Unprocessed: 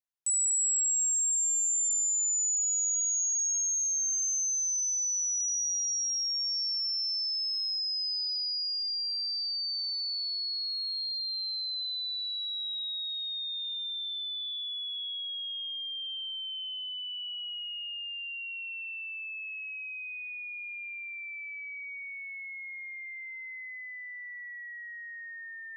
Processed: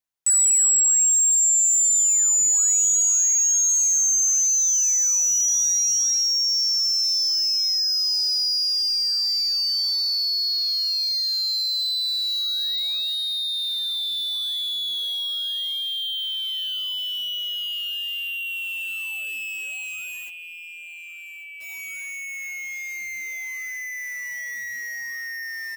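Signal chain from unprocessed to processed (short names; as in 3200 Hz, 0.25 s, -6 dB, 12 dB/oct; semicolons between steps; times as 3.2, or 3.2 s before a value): dynamic EQ 2400 Hz, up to -6 dB, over -56 dBFS, Q 6.2; in parallel at -3 dB: bit-crush 7-bit; on the sum: feedback echo 1.143 s, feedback 49%, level -15 dB; gain +5 dB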